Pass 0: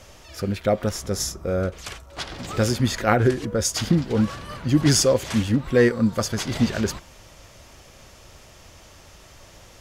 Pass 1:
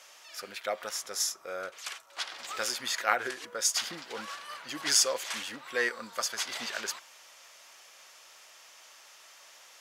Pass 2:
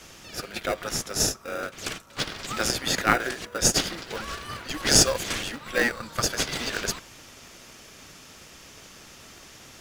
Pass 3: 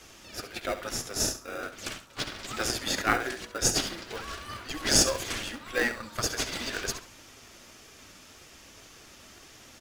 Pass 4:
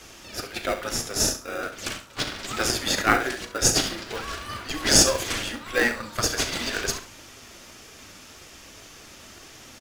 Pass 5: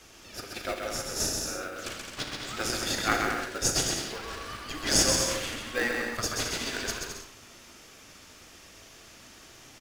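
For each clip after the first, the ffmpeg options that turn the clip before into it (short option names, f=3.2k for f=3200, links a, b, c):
-af "highpass=1k,volume=-2.5dB"
-filter_complex "[0:a]lowshelf=f=490:g=-6,asplit=2[a][b];[b]acrusher=samples=41:mix=1:aa=0.000001,volume=-4dB[c];[a][c]amix=inputs=2:normalize=0,volume=5.5dB"
-filter_complex "[0:a]flanger=delay=2.4:depth=1.2:regen=-55:speed=1.9:shape=triangular,asplit=2[a][b];[b]aecho=0:1:68|136|204:0.251|0.0603|0.0145[c];[a][c]amix=inputs=2:normalize=0"
-filter_complex "[0:a]asplit=2[a][b];[b]adelay=38,volume=-11.5dB[c];[a][c]amix=inputs=2:normalize=0,volume=5dB"
-af "aecho=1:1:130|214.5|269.4|305.1|328.3:0.631|0.398|0.251|0.158|0.1,volume=-7dB"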